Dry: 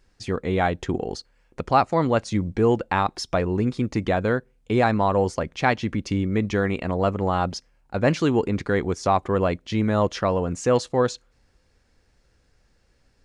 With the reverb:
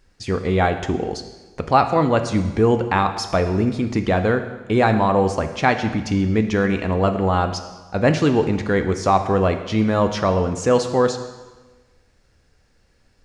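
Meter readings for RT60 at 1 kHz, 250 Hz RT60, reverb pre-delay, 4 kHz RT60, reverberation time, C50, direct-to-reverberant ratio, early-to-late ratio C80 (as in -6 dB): 1.2 s, 1.3 s, 4 ms, 1.2 s, 1.3 s, 9.5 dB, 7.0 dB, 11.0 dB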